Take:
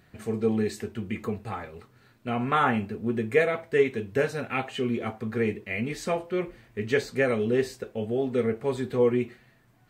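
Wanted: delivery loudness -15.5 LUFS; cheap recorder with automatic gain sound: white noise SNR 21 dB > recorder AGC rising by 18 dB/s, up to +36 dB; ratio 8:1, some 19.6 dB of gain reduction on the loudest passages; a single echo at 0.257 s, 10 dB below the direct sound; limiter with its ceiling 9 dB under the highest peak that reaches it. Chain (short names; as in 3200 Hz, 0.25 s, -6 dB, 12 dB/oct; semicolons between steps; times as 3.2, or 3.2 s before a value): compressor 8:1, threshold -38 dBFS; limiter -34.5 dBFS; echo 0.257 s -10 dB; white noise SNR 21 dB; recorder AGC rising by 18 dB/s, up to +36 dB; gain +29 dB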